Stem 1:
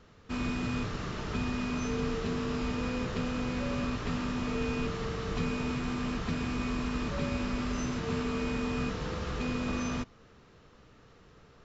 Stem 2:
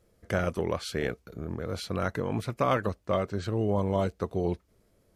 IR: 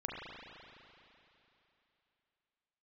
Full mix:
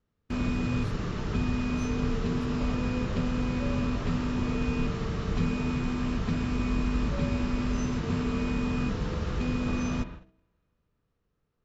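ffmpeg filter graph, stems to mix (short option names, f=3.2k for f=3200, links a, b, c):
-filter_complex "[0:a]volume=-3dB,asplit=2[a][b];[b]volume=-9.5dB[c];[1:a]volume=-20dB[d];[2:a]atrim=start_sample=2205[e];[c][e]afir=irnorm=-1:irlink=0[f];[a][d][f]amix=inputs=3:normalize=0,agate=range=-25dB:threshold=-46dB:ratio=16:detection=peak,lowshelf=f=360:g=8,bandreject=f=64.42:t=h:w=4,bandreject=f=128.84:t=h:w=4,bandreject=f=193.26:t=h:w=4,bandreject=f=257.68:t=h:w=4,bandreject=f=322.1:t=h:w=4,bandreject=f=386.52:t=h:w=4,bandreject=f=450.94:t=h:w=4,bandreject=f=515.36:t=h:w=4,bandreject=f=579.78:t=h:w=4,bandreject=f=644.2:t=h:w=4,bandreject=f=708.62:t=h:w=4,bandreject=f=773.04:t=h:w=4"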